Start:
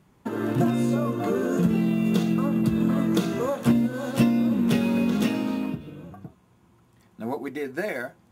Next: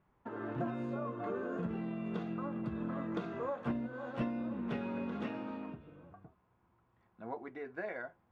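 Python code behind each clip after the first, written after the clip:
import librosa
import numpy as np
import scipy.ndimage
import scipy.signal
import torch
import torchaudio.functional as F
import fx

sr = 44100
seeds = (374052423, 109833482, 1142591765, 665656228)

y = scipy.signal.sosfilt(scipy.signal.butter(2, 1500.0, 'lowpass', fs=sr, output='sos'), x)
y = fx.peak_eq(y, sr, hz=190.0, db=-11.5, octaves=2.9)
y = F.gain(torch.from_numpy(y), -5.5).numpy()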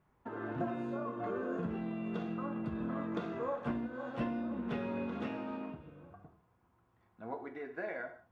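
y = fx.rev_gated(x, sr, seeds[0], gate_ms=220, shape='falling', drr_db=6.5)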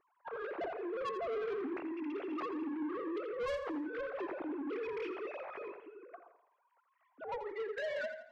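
y = fx.sine_speech(x, sr)
y = 10.0 ** (-37.5 / 20.0) * np.tanh(y / 10.0 ** (-37.5 / 20.0))
y = fx.echo_feedback(y, sr, ms=84, feedback_pct=43, wet_db=-11.5)
y = F.gain(torch.from_numpy(y), 3.0).numpy()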